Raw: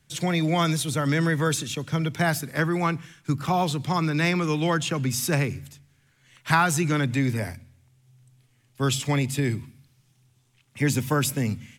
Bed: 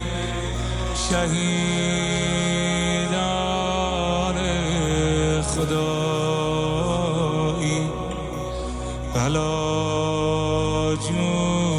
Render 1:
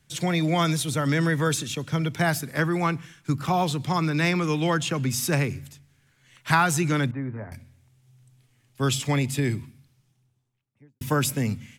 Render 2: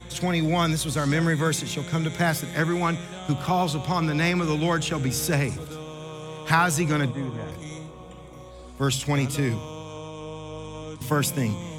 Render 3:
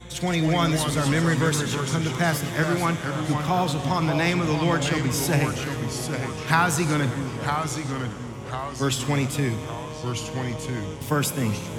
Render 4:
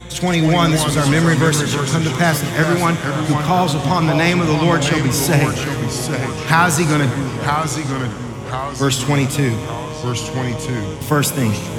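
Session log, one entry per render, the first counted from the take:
7.11–7.52 ladder low-pass 1600 Hz, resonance 35%; 9.54–11.01 studio fade out
add bed -15 dB
Schroeder reverb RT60 3.2 s, combs from 32 ms, DRR 12 dB; echoes that change speed 0.152 s, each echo -2 st, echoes 3, each echo -6 dB
gain +7.5 dB; limiter -1 dBFS, peak gain reduction 2 dB

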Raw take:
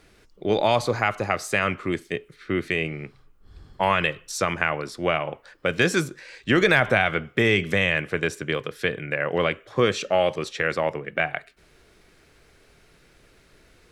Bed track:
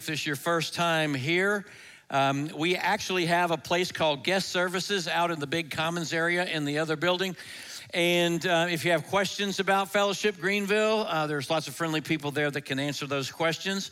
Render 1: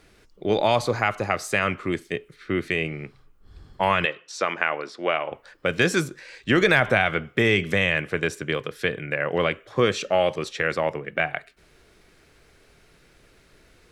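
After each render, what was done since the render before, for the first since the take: 4.05–5.32 BPF 320–4900 Hz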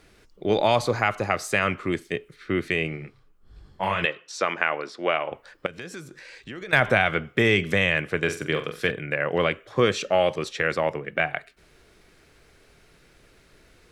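2.96–4.01 detuned doubles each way 38 cents -> 53 cents; 5.66–6.73 compressor 3:1, threshold -40 dBFS; 8.23–8.91 flutter echo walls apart 7.7 m, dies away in 0.31 s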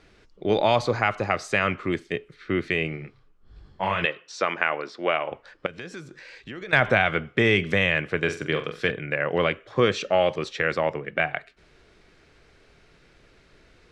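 LPF 5700 Hz 12 dB/oct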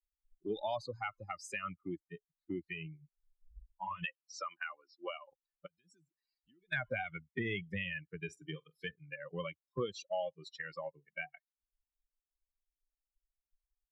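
per-bin expansion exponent 3; compressor 2:1, threshold -43 dBFS, peak gain reduction 13 dB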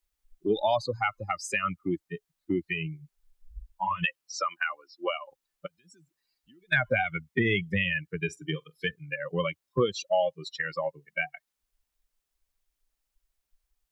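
gain +11.5 dB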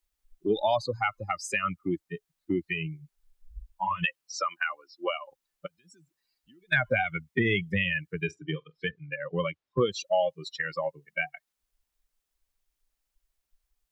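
8.31–9.81 air absorption 160 m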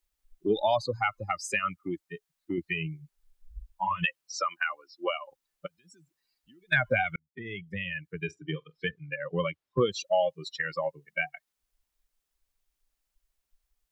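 1.59–2.58 low shelf 360 Hz -7.5 dB; 7.16–8.73 fade in

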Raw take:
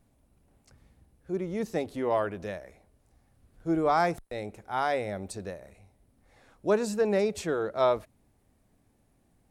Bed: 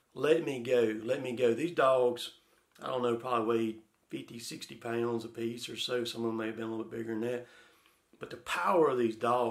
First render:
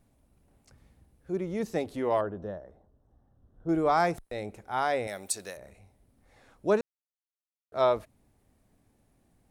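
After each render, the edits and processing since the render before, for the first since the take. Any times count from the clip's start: 2.21–3.69 running mean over 19 samples; 5.07–5.57 tilt +4 dB/oct; 6.81–7.72 mute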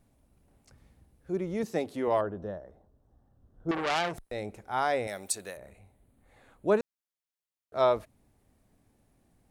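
1.63–2.08 HPF 130 Hz; 3.71–4.17 core saturation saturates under 3000 Hz; 5.35–6.8 bell 5400 Hz -15 dB 0.33 oct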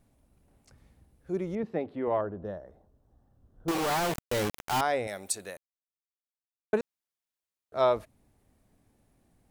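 1.55–2.45 air absorption 460 m; 3.68–4.81 companded quantiser 2-bit; 5.57–6.73 mute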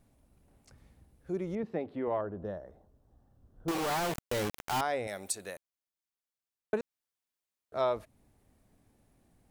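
compressor 1.5:1, threshold -35 dBFS, peak gain reduction 6 dB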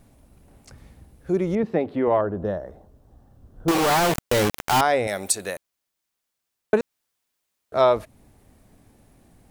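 gain +12 dB

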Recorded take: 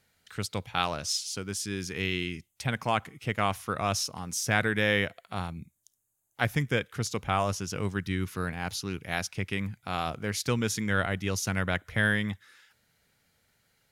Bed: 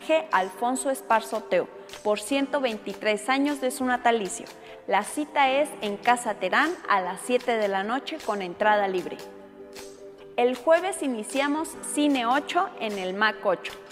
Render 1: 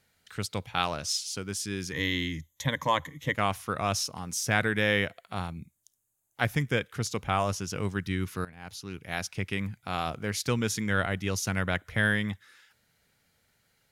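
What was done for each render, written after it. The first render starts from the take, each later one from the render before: 1.92–3.35 ripple EQ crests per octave 1.1, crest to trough 14 dB; 8.45–9.38 fade in, from -17.5 dB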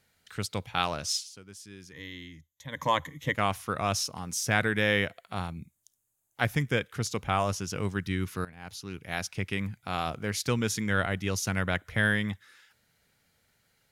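1.16–2.83 dip -13.5 dB, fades 0.14 s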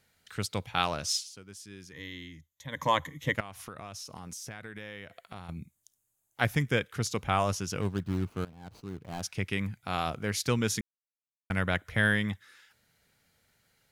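3.4–5.49 compressor 16:1, threshold -38 dBFS; 7.81–9.23 median filter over 25 samples; 10.81–11.5 mute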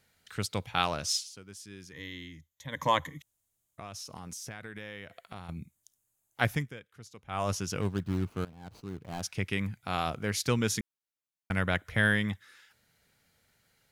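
3.22–3.78 room tone; 6.49–7.52 dip -18.5 dB, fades 0.25 s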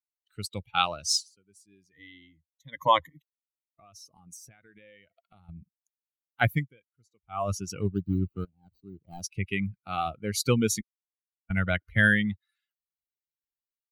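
per-bin expansion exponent 2; AGC gain up to 7 dB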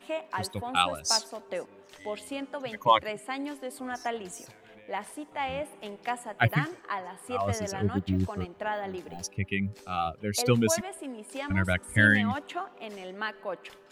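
add bed -11 dB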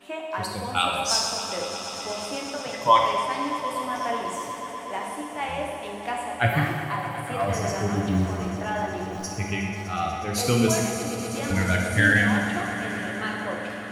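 swelling echo 0.122 s, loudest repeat 5, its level -16 dB; non-linear reverb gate 0.46 s falling, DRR -1 dB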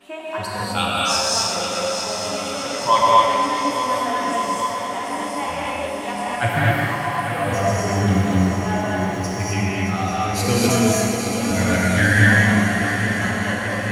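on a send: swung echo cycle 0.836 s, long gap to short 3:1, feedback 66%, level -10.5 dB; on the sum: non-linear reverb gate 0.28 s rising, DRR -3.5 dB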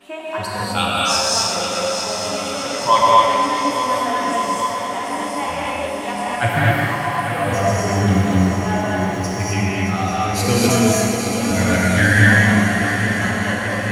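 gain +2 dB; limiter -1 dBFS, peak gain reduction 1 dB

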